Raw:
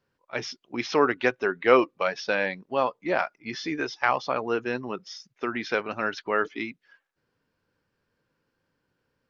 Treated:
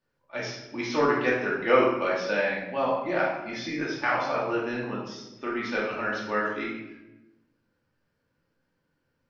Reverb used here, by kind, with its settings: shoebox room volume 400 m³, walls mixed, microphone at 2.5 m; gain -7.5 dB

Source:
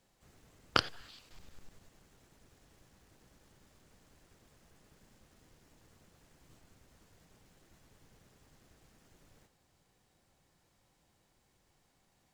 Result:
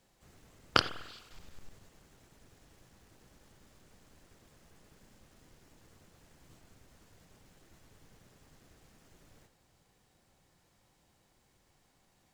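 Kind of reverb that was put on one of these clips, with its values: spring tank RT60 1.1 s, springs 49 ms, chirp 50 ms, DRR 13.5 dB; gain +2.5 dB

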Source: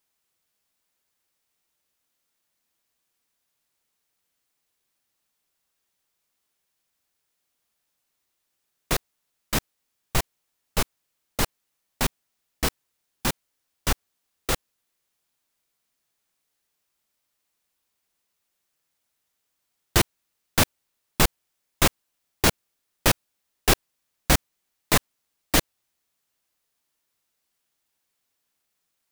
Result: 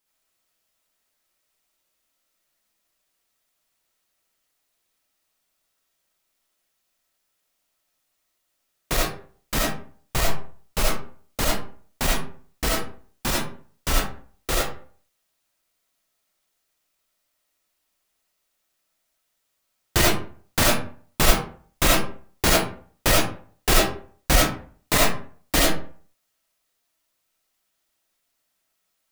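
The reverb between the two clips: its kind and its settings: digital reverb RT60 0.47 s, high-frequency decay 0.6×, pre-delay 25 ms, DRR -4 dB; gain -1.5 dB

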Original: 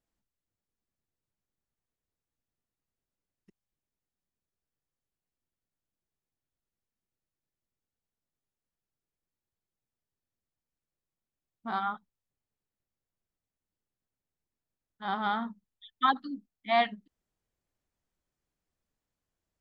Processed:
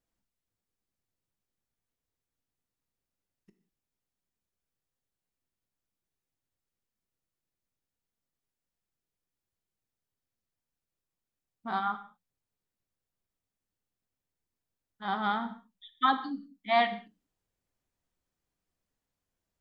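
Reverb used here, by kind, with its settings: non-linear reverb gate 0.22 s falling, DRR 9 dB

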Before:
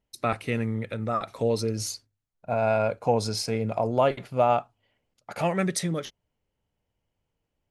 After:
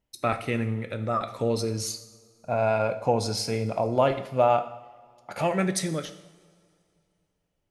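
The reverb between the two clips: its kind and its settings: two-slope reverb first 0.77 s, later 2.6 s, from -18 dB, DRR 8.5 dB

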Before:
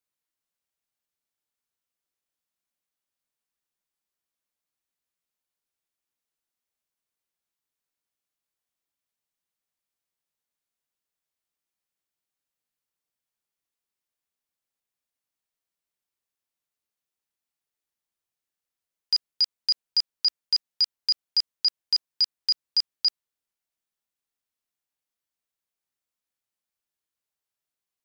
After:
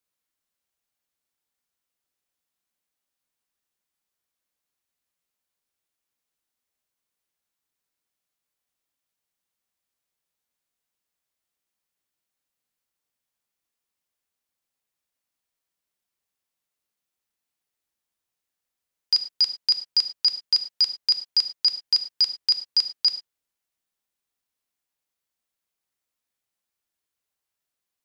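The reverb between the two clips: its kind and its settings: non-linear reverb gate 0.13 s flat, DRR 9 dB; gain +3 dB

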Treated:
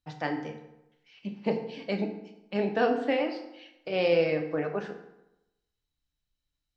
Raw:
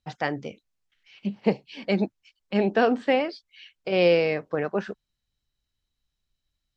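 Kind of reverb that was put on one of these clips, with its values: FDN reverb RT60 0.91 s, low-frequency decay 1×, high-frequency decay 0.65×, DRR 3 dB; gain -6 dB

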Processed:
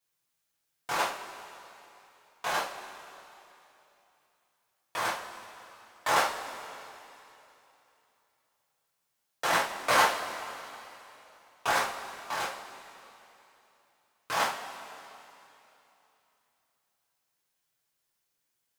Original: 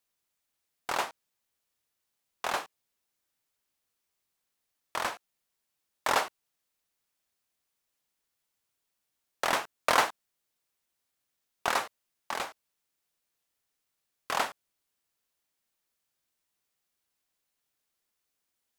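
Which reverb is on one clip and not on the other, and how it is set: two-slope reverb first 0.3 s, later 3.1 s, from -18 dB, DRR -8 dB; gain -6.5 dB

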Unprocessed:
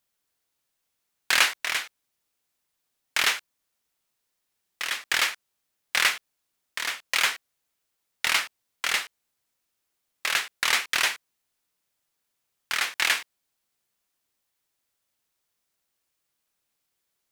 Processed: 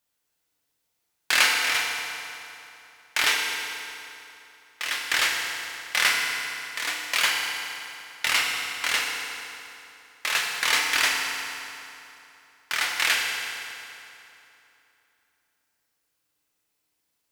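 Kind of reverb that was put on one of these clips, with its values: FDN reverb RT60 3 s, high-frequency decay 0.8×, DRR -1 dB; gain -1 dB

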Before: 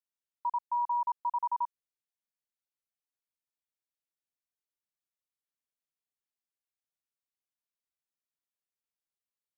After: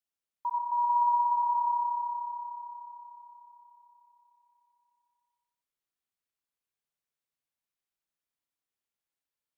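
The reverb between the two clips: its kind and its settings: spring tank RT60 4 s, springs 59 ms, chirp 25 ms, DRR 0.5 dB

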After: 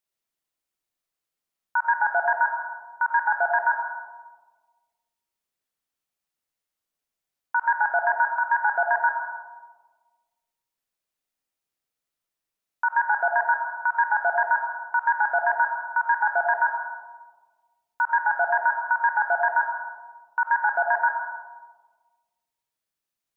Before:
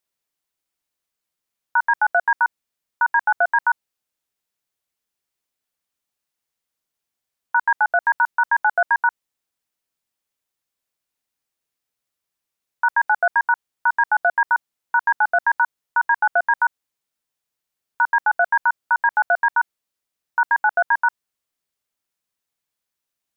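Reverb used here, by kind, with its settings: digital reverb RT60 1.4 s, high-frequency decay 0.3×, pre-delay 50 ms, DRR 2 dB; gain -5 dB

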